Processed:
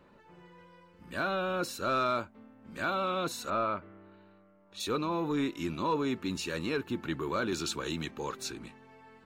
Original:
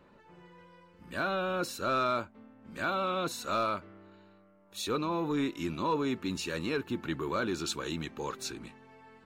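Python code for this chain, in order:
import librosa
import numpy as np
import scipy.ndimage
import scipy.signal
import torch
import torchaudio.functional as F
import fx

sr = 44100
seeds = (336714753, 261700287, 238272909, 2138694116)

y = fx.lowpass(x, sr, hz=fx.line((3.49, 2000.0), (4.79, 4800.0)), slope=12, at=(3.49, 4.79), fade=0.02)
y = fx.band_squash(y, sr, depth_pct=70, at=(7.52, 8.11))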